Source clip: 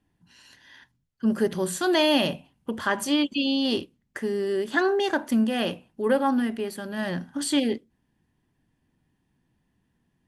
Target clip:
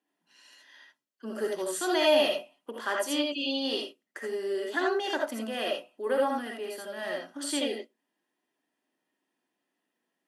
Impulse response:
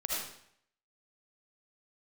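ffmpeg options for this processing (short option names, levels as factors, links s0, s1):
-filter_complex "[0:a]highpass=f=300:w=0.5412,highpass=f=300:w=1.3066[s0];[1:a]atrim=start_sample=2205,atrim=end_sample=3969[s1];[s0][s1]afir=irnorm=-1:irlink=0,volume=0.562"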